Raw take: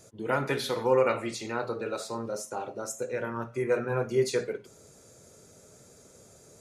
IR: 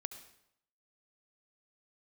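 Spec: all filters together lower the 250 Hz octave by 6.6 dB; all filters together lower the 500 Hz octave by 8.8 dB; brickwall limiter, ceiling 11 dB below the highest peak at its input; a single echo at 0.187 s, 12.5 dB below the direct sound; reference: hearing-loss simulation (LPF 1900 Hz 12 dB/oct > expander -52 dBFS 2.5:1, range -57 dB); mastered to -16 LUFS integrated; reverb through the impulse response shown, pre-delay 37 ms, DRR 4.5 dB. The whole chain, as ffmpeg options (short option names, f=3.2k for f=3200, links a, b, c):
-filter_complex "[0:a]equalizer=f=250:t=o:g=-5,equalizer=f=500:t=o:g=-9,alimiter=level_in=2.5dB:limit=-24dB:level=0:latency=1,volume=-2.5dB,aecho=1:1:187:0.237,asplit=2[a][b];[1:a]atrim=start_sample=2205,adelay=37[c];[b][c]afir=irnorm=-1:irlink=0,volume=-2dB[d];[a][d]amix=inputs=2:normalize=0,lowpass=1.9k,agate=range=-57dB:threshold=-52dB:ratio=2.5,volume=22.5dB"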